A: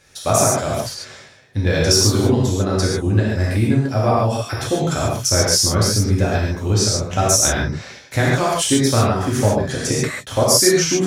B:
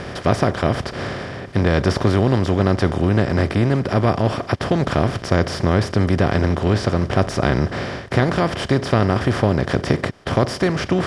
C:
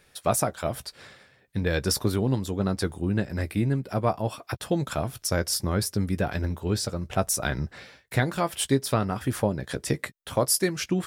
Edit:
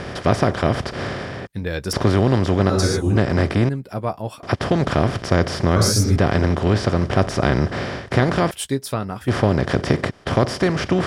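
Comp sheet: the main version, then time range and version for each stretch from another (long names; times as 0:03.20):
B
0:01.47–0:01.93: punch in from C
0:02.70–0:03.16: punch in from A
0:03.69–0:04.43: punch in from C
0:05.76–0:06.16: punch in from A
0:08.51–0:09.28: punch in from C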